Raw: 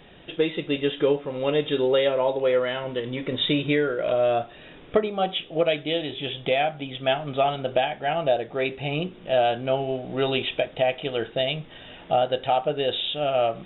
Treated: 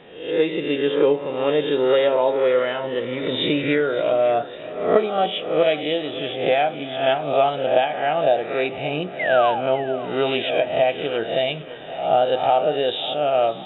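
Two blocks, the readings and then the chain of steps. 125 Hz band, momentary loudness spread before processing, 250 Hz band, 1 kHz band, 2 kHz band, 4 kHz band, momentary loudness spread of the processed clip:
−1.5 dB, 7 LU, +2.5 dB, +5.0 dB, +4.0 dB, +1.0 dB, 7 LU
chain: peak hold with a rise ahead of every peak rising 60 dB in 0.61 s
high-pass filter 260 Hz 6 dB per octave
high-shelf EQ 2,700 Hz −9.5 dB
sound drawn into the spectrogram fall, 0:09.19–0:09.61, 730–2,200 Hz −29 dBFS
on a send: echo with a time of its own for lows and highs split 400 Hz, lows 303 ms, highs 557 ms, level −16 dB
on the sum: level +4 dB

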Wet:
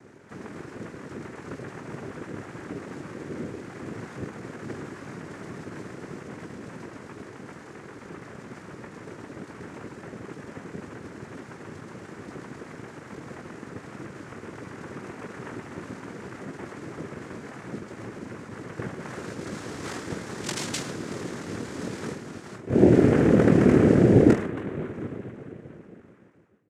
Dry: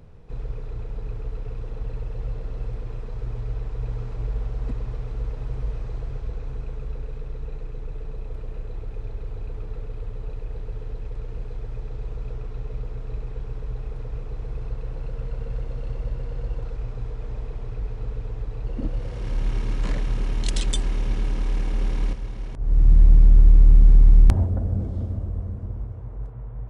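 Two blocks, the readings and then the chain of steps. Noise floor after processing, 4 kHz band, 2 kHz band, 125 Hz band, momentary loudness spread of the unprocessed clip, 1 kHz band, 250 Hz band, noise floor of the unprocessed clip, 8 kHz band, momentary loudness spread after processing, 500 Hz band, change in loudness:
−46 dBFS, −1.0 dB, +9.0 dB, −5.0 dB, 19 LU, +7.0 dB, +12.5 dB, −34 dBFS, can't be measured, 24 LU, +12.5 dB, +0.5 dB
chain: fade-out on the ending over 2.86 s
parametric band 1,100 Hz +7 dB
harmonic generator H 7 −11 dB, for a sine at −4 dBFS
on a send: reverse bouncing-ball delay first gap 20 ms, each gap 1.2×, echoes 5
on the sum: cochlear-implant simulation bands 3

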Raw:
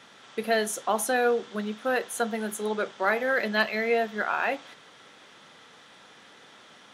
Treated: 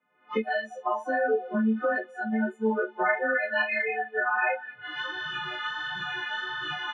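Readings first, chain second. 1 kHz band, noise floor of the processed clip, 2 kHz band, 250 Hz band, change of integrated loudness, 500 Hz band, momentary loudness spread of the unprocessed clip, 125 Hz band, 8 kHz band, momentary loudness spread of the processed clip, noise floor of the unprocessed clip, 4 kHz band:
0.0 dB, −55 dBFS, +2.5 dB, +3.5 dB, −1.0 dB, −2.0 dB, 7 LU, can't be measured, below −20 dB, 7 LU, −53 dBFS, +2.0 dB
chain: every partial snapped to a pitch grid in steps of 3 semitones
camcorder AGC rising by 59 dB per second
floating-point word with a short mantissa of 4 bits
low-shelf EQ 260 Hz +6.5 dB
repeating echo 200 ms, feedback 27%, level −12.5 dB
flanger 1.5 Hz, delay 0.2 ms, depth 4.6 ms, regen −9%
noise reduction from a noise print of the clip's start 23 dB
low-pass that shuts in the quiet parts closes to 1,700 Hz, open at −22.5 dBFS
Chebyshev band-pass filter 140–2,600 Hz, order 3

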